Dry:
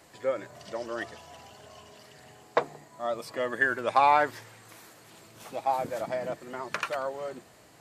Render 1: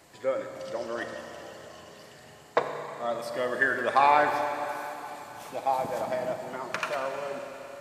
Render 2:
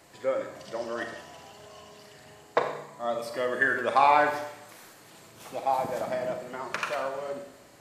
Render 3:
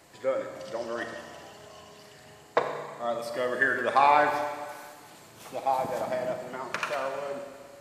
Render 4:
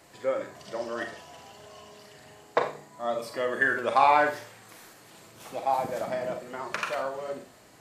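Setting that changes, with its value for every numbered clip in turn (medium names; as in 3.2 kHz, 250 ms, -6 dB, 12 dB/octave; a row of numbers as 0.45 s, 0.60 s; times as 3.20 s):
Schroeder reverb, RT60: 3.7 s, 0.81 s, 1.7 s, 0.36 s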